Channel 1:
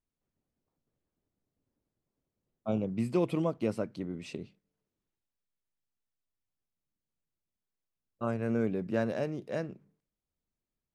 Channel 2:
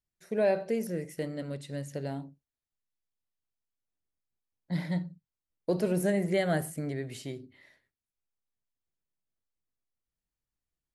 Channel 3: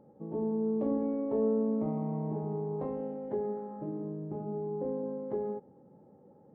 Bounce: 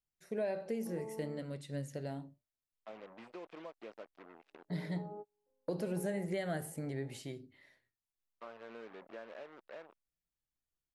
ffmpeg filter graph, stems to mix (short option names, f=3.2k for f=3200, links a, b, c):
-filter_complex "[0:a]acrusher=bits=5:mix=0:aa=0.5,adelay=200,volume=-10dB[a];[1:a]flanger=delay=6:depth=3:regen=81:speed=0.68:shape=sinusoidal,volume=-0.5dB,asplit=2[b][c];[2:a]adelay=650,volume=1.5dB,asplit=3[d][e][f];[d]atrim=end=1.39,asetpts=PTS-STARTPTS,afade=t=out:st=1.386:d=0.004:c=hsin[g];[e]atrim=start=1.39:end=4.2,asetpts=PTS-STARTPTS,volume=0[h];[f]atrim=start=4.2,asetpts=PTS-STARTPTS,afade=t=in:d=0.004:c=hsin[i];[g][h][i]concat=n=3:v=0:a=1[j];[c]apad=whole_len=317303[k];[j][k]sidechaingate=range=-45dB:threshold=-58dB:ratio=16:detection=peak[l];[a][l]amix=inputs=2:normalize=0,highpass=520,lowpass=2.9k,acompressor=threshold=-45dB:ratio=3,volume=0dB[m];[b][m]amix=inputs=2:normalize=0,acompressor=threshold=-34dB:ratio=3"